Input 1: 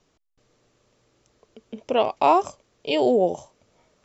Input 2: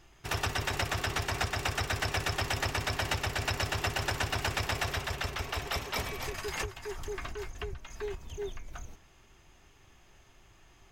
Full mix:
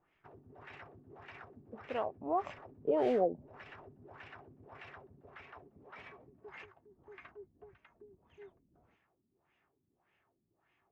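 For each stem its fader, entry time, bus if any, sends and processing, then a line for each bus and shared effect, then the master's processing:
2.3 s -16.5 dB -> 2.57 s -4.5 dB, 0.00 s, no send, modulation noise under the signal 16 dB
-16.5 dB, 0.00 s, no send, HPF 140 Hz 12 dB/oct; limiter -26.5 dBFS, peak gain reduction 10.5 dB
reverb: off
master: LFO low-pass sine 1.7 Hz 230–2500 Hz; compressor 3:1, threshold -29 dBFS, peak gain reduction 11 dB

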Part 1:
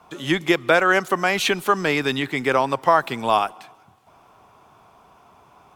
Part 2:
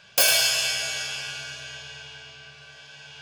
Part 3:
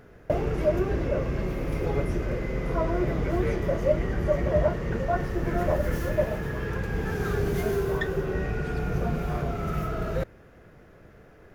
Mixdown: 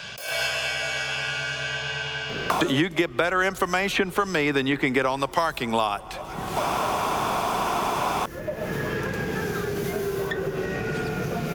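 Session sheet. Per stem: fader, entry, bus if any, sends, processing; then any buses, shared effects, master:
-0.5 dB, 2.50 s, no send, three-band squash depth 70%
-14.5 dB, 0.00 s, no send, attack slew limiter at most 110 dB/s
-10.5 dB, 2.30 s, no send, compressor 10:1, threshold -31 dBFS, peak gain reduction 14.5 dB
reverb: off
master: three-band squash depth 100%

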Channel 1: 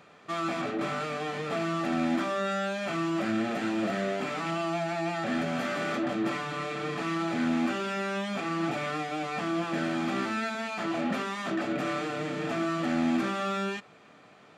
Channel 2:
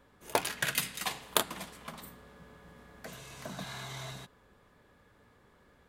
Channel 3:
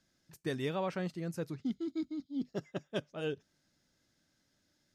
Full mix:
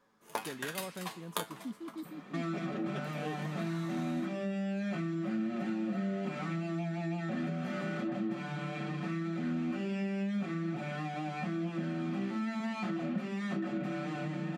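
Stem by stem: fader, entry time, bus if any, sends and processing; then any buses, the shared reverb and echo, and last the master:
-2.0 dB, 2.05 s, no send, tone controls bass +12 dB, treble -4 dB; comb 5.5 ms, depth 78%; compressor 5:1, threshold -33 dBFS, peak gain reduction 15 dB
-3.5 dB, 0.00 s, no send, bell 1100 Hz +5.5 dB; resonator 110 Hz, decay 0.18 s, harmonics all, mix 80%
-8.0 dB, 0.00 s, no send, dry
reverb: off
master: resonant low shelf 130 Hz -10.5 dB, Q 1.5

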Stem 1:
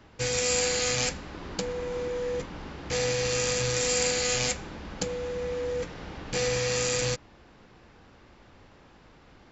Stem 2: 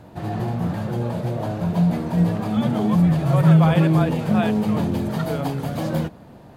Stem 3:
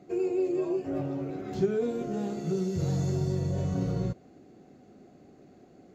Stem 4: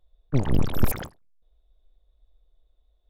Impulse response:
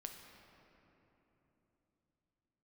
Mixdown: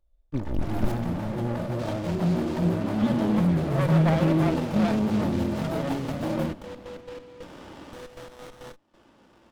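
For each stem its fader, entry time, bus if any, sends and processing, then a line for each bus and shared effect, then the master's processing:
-2.5 dB, 1.60 s, bus A, no send, bell 3400 Hz +9 dB 1.4 oct; compressor, threshold -27 dBFS, peak gain reduction 8.5 dB; step gate "xxx.x.x.x..xxx" 137 bpm -12 dB
-3.0 dB, 0.45 s, no bus, no send, vibrato 12 Hz 36 cents
-5.0 dB, 1.95 s, bus A, send -5.5 dB, dry
-8.5 dB, 0.00 s, no bus, send -3.5 dB, dry
bus A: 0.0 dB, BPF 120–4600 Hz; limiter -29.5 dBFS, peak gain reduction 11 dB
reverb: on, RT60 3.5 s, pre-delay 7 ms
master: comb 3.4 ms, depth 41%; running maximum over 17 samples

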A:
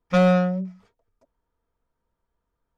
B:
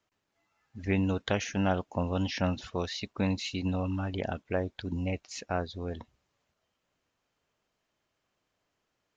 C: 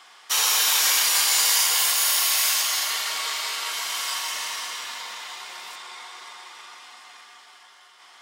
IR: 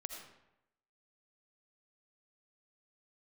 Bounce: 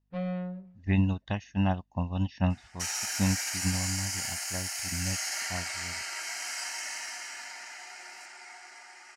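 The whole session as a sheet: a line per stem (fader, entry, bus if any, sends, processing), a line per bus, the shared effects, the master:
-12.0 dB, 0.00 s, bus A, no send, median filter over 41 samples; LPF 4000 Hz 24 dB/oct; hum 50 Hz, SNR 31 dB
-1.0 dB, 0.00 s, no bus, no send, tone controls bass +5 dB, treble +6 dB; comb 1.1 ms, depth 64%; upward expander 2.5:1, over -31 dBFS
+1.5 dB, 2.50 s, bus A, no send, tone controls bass -2 dB, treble +9 dB; fixed phaser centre 720 Hz, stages 8
bus A: 0.0 dB, resonator 180 Hz, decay 0.6 s, harmonics all, mix 50%; limiter -15.5 dBFS, peak gain reduction 8 dB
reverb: off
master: LPF 5300 Hz 12 dB/oct

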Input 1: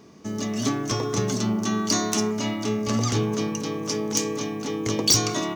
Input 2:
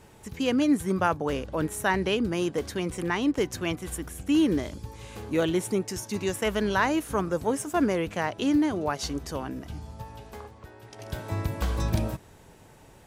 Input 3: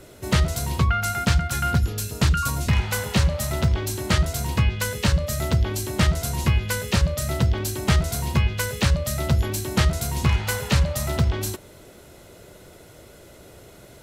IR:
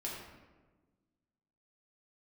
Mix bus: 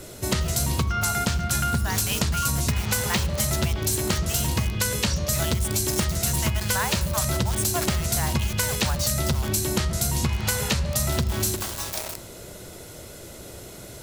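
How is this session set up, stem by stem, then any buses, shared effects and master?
-16.0 dB, 0.00 s, no send, LPF 5900 Hz
1.75 s -11 dB -> 2 s -0.5 dB, 0.00 s, send -13.5 dB, steep high-pass 610 Hz 72 dB/oct; bit-crush 6-bit; sustainer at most 150 dB/s
+2.0 dB, 0.00 s, send -9.5 dB, high shelf 8200 Hz -4 dB; compressor, threshold -22 dBFS, peak gain reduction 8 dB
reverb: on, RT60 1.3 s, pre-delay 4 ms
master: tone controls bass +2 dB, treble +9 dB; compressor, threshold -20 dBFS, peak gain reduction 6.5 dB

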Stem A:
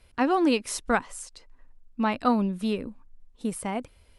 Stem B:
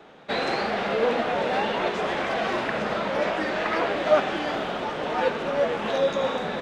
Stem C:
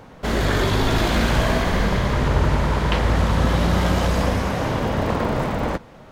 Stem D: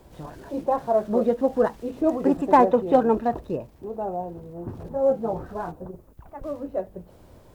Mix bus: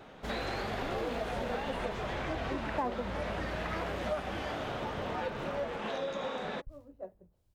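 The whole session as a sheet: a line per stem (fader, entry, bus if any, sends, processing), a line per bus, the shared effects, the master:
-10.5 dB, 0.60 s, no send, de-esser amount 85%
-3.5 dB, 0.00 s, no send, notches 60/120/180/240/300/360/420/480/540 Hz
-14.0 dB, 0.00 s, no send, dry
-10.5 dB, 0.25 s, muted 3.1–5.69, no send, three-band expander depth 100%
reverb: off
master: compressor 3:1, threshold -35 dBFS, peak gain reduction 15 dB

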